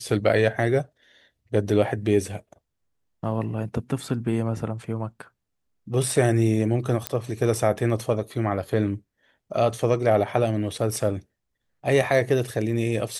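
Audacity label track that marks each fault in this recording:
7.070000	7.070000	click −8 dBFS

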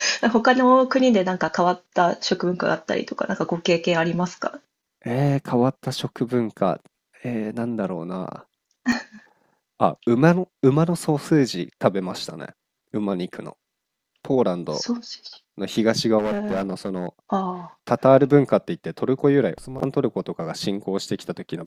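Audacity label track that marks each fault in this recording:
8.920000	8.920000	drop-out 3.2 ms
16.180000	17.070000	clipping −20 dBFS

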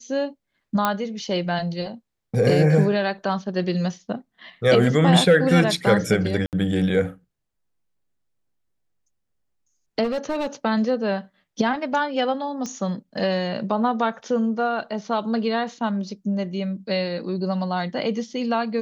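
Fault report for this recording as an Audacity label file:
0.850000	0.850000	click −6 dBFS
6.460000	6.530000	drop-out 68 ms
10.030000	10.470000	clipping −20.5 dBFS
12.660000	12.660000	click −18 dBFS

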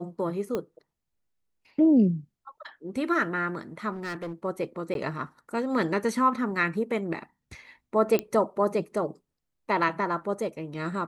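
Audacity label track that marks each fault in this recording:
0.550000	0.550000	click −17 dBFS
3.920000	4.330000	clipping −30.5 dBFS
4.940000	4.950000	drop-out 12 ms
8.190000	8.190000	click −12 dBFS

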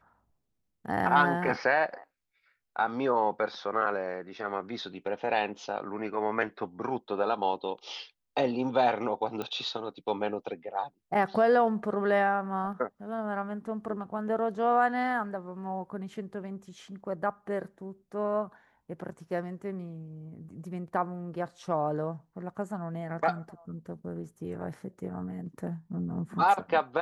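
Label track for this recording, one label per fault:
9.420000	9.420000	click −21 dBFS

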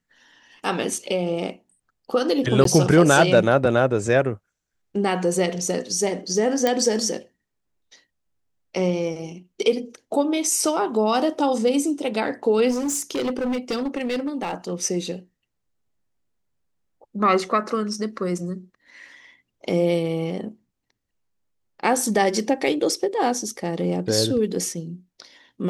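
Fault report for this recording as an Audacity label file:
2.640000	2.650000	drop-out 13 ms
6.670000	6.670000	click −7 dBFS
12.700000	14.550000	clipping −21 dBFS

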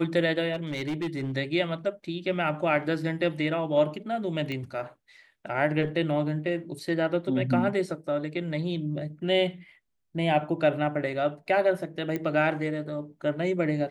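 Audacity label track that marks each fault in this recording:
0.530000	1.320000	clipping −26 dBFS
4.520000	4.520000	click −21 dBFS
12.160000	12.160000	click −18 dBFS

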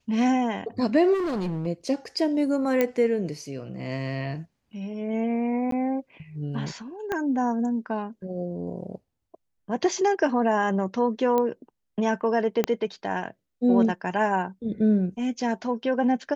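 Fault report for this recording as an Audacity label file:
1.130000	1.670000	clipping −24.5 dBFS
2.810000	2.810000	click −10 dBFS
5.710000	5.720000	drop-out 13 ms
7.120000	7.120000	click −15 dBFS
11.380000	11.380000	click −13 dBFS
12.640000	12.640000	click −9 dBFS

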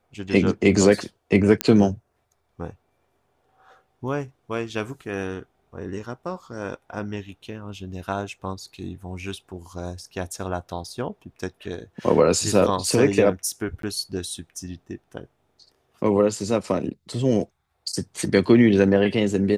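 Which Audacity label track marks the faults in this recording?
1.610000	1.610000	click −4 dBFS
13.820000	13.830000	drop-out 13 ms

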